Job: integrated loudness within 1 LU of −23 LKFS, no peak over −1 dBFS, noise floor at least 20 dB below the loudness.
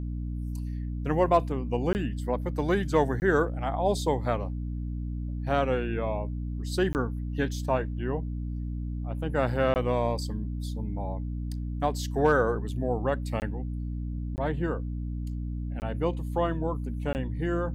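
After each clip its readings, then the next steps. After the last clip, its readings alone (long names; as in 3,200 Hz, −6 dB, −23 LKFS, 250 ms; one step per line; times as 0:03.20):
number of dropouts 8; longest dropout 19 ms; mains hum 60 Hz; hum harmonics up to 300 Hz; level of the hum −30 dBFS; integrated loudness −29.5 LKFS; sample peak −10.5 dBFS; target loudness −23.0 LKFS
→ repair the gap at 0:01.93/0:03.20/0:06.93/0:09.74/0:13.40/0:14.36/0:15.80/0:17.13, 19 ms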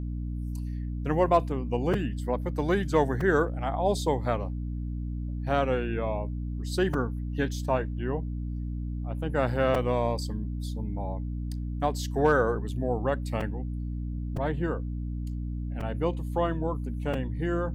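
number of dropouts 0; mains hum 60 Hz; hum harmonics up to 300 Hz; level of the hum −30 dBFS
→ mains-hum notches 60/120/180/240/300 Hz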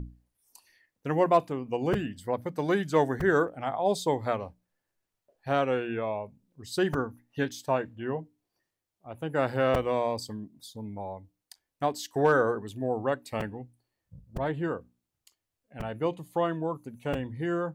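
mains hum none found; integrated loudness −29.5 LKFS; sample peak −11.0 dBFS; target loudness −23.0 LKFS
→ level +6.5 dB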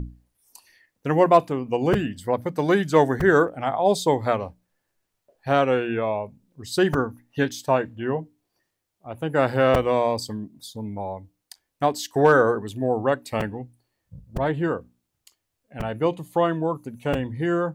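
integrated loudness −23.0 LKFS; sample peak −4.5 dBFS; background noise floor −79 dBFS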